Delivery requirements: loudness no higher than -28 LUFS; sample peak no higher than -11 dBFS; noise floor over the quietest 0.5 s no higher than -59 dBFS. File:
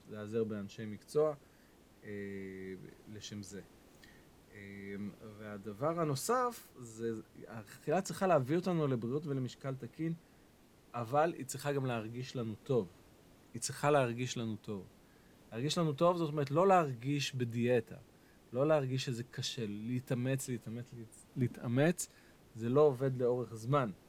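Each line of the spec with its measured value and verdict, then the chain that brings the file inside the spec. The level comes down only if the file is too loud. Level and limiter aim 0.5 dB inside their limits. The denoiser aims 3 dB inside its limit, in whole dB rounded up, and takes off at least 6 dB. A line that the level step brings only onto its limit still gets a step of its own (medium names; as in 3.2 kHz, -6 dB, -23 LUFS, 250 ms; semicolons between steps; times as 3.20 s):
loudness -35.5 LUFS: pass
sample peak -15.5 dBFS: pass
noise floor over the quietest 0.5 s -63 dBFS: pass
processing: none needed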